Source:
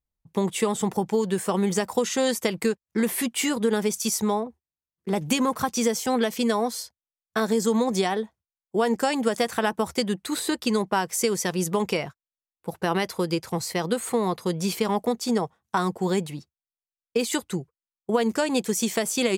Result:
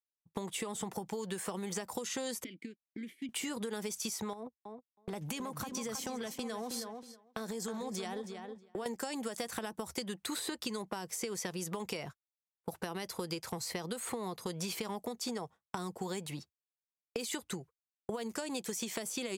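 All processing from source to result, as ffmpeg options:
-filter_complex "[0:a]asettb=1/sr,asplit=3[s0][s1][s2];[s0]atrim=end=2.444[s3];[s1]atrim=start=2.44:end=3.29,asetpts=PTS-STARTPTS,afade=t=in:d=0.004:c=qsin,afade=t=out:st=0.846:d=0.004:c=qsin,highshelf=f=4900:g=6.5,acompressor=threshold=0.0562:ratio=12:attack=3.2:release=140:knee=1:detection=peak,asplit=3[s4][s5][s6];[s4]bandpass=f=270:t=q:w=8,volume=1[s7];[s5]bandpass=f=2290:t=q:w=8,volume=0.501[s8];[s6]bandpass=f=3010:t=q:w=8,volume=0.355[s9];[s7][s8][s9]amix=inputs=3:normalize=0[s10];[s2]atrim=start=3.286[s11];[s3][s10]acrossfade=d=0.004:c1=hsin:c2=qsin[s12];[s12][s11]acrossfade=d=0.004:c1=qsin:c2=hsin,asettb=1/sr,asplit=3[s13][s14][s15];[s13]atrim=end=4.334[s16];[s14]atrim=start=4.33:end=8.86,asetpts=PTS-STARTPTS,afade=t=in:d=0.004:c=qsin,afade=t=out:st=4.526:d=0.004:c=qsin,agate=range=0.0562:threshold=0.0178:ratio=16:release=100:detection=peak,acompressor=threshold=0.0251:ratio=6:attack=3.2:release=140:knee=1:detection=peak,asplit=2[s17][s18];[s18]adelay=319,lowpass=f=4400:p=1,volume=0.376,asplit=2[s19][s20];[s20]adelay=319,lowpass=f=4400:p=1,volume=0.39,asplit=2[s21][s22];[s22]adelay=319,lowpass=f=4400:p=1,volume=0.39,asplit=2[s23][s24];[s24]adelay=319,lowpass=f=4400:p=1,volume=0.39[s25];[s17][s19][s21][s23][s25]amix=inputs=5:normalize=0,atrim=end_sample=199773[s26];[s15]atrim=start=8.856[s27];[s16][s26]acrossfade=d=0.004:c1=hsin:c2=qsin[s28];[s28][s27]acrossfade=d=0.004:c1=qsin:c2=hsin,acompressor=threshold=0.0447:ratio=6,agate=range=0.0224:threshold=0.00891:ratio=3:detection=peak,acrossover=split=560|4300[s29][s30][s31];[s29]acompressor=threshold=0.01:ratio=4[s32];[s30]acompressor=threshold=0.00794:ratio=4[s33];[s31]acompressor=threshold=0.00891:ratio=4[s34];[s32][s33][s34]amix=inputs=3:normalize=0"

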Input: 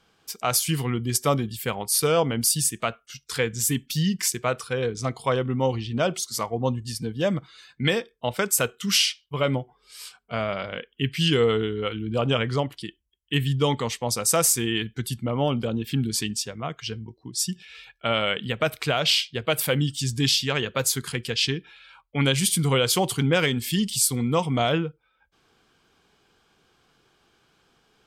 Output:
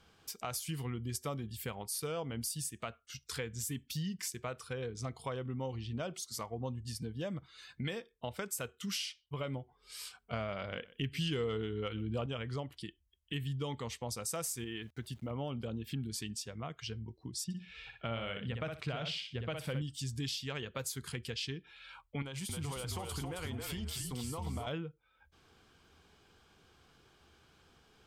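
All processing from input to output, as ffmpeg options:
-filter_complex "[0:a]asettb=1/sr,asplit=3[s0][s1][s2];[s0]atrim=end=10.334[s3];[s1]atrim=start=10.33:end=12.26,asetpts=PTS-STARTPTS,afade=t=in:d=0.004:c=qsin,afade=t=out:st=1.926:d=0.004:c=qsin,acontrast=75,aecho=1:1:123:0.0668,atrim=end_sample=85113[s4];[s2]atrim=start=12.256[s5];[s3][s4]acrossfade=d=0.004:c1=hsin:c2=qsin[s6];[s6][s5]acrossfade=d=0.004:c1=qsin:c2=hsin,asettb=1/sr,asplit=3[s7][s8][s9];[s7]atrim=end=14.644[s10];[s8]atrim=start=14.64:end=15.31,asetpts=PTS-STARTPTS,afade=t=in:d=0.004:c=qsin,afade=t=out:st=0.666:d=0.004:c=qsin,lowpass=f=2400:p=1,lowshelf=f=220:g=-7.5,aeval=exprs='val(0)*gte(abs(val(0)),0.00237)':c=same[s11];[s9]atrim=start=15.306[s12];[s10][s11]acrossfade=d=0.004:c1=hsin:c2=qsin[s13];[s13][s12]acrossfade=d=0.004:c1=qsin:c2=hsin,asettb=1/sr,asplit=3[s14][s15][s16];[s14]atrim=end=17.444[s17];[s15]atrim=start=17.44:end=19.82,asetpts=PTS-STARTPTS,afade=t=in:d=0.004:c=qsin,afade=t=out:st=2.376:d=0.004:c=qsin,lowpass=8200,bass=f=250:g=5,treble=f=4000:g=-7,aecho=1:1:61|122|183:0.501|0.0852|0.0145,atrim=end_sample=104958[s18];[s16]atrim=start=19.816[s19];[s17][s18]acrossfade=d=0.004:c1=hsin:c2=qsin[s20];[s20][s19]acrossfade=d=0.004:c1=qsin:c2=hsin,asettb=1/sr,asplit=3[s21][s22][s23];[s21]atrim=end=22.224[s24];[s22]atrim=start=22.22:end=24.67,asetpts=PTS-STARTPTS,afade=t=in:d=0.004:c=qsin,afade=t=out:st=2.446:d=0.004:c=qsin,equalizer=f=920:t=o:w=1.2:g=9.5,acompressor=threshold=0.0562:ratio=12:attack=3.2:release=140:knee=1:detection=peak,asplit=5[s25][s26][s27][s28][s29];[s26]adelay=269,afreqshift=-42,volume=0.631[s30];[s27]adelay=538,afreqshift=-84,volume=0.209[s31];[s28]adelay=807,afreqshift=-126,volume=0.0684[s32];[s29]adelay=1076,afreqshift=-168,volume=0.0226[s33];[s25][s30][s31][s32][s33]amix=inputs=5:normalize=0,atrim=end_sample=108045[s34];[s23]atrim=start=24.666[s35];[s24][s34]acrossfade=d=0.004:c1=hsin:c2=qsin[s36];[s36][s35]acrossfade=d=0.004:c1=qsin:c2=hsin,equalizer=f=77:t=o:w=0.39:g=10,acompressor=threshold=0.00794:ratio=2.5,lowshelf=f=120:g=4.5,volume=0.794"

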